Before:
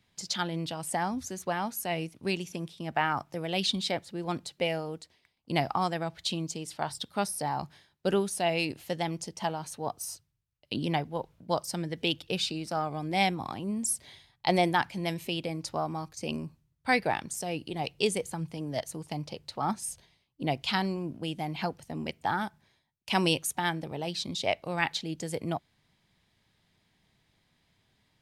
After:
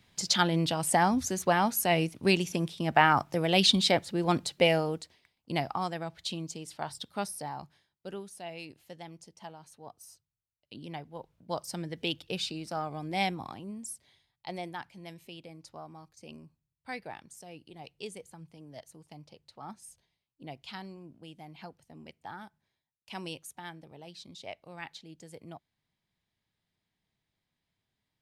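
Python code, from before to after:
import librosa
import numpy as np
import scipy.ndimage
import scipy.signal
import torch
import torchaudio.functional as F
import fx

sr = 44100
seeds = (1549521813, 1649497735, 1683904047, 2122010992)

y = fx.gain(x, sr, db=fx.line((4.82, 6.0), (5.66, -4.0), (7.25, -4.0), (8.06, -14.0), (10.73, -14.0), (11.73, -3.5), (13.37, -3.5), (14.08, -14.0)))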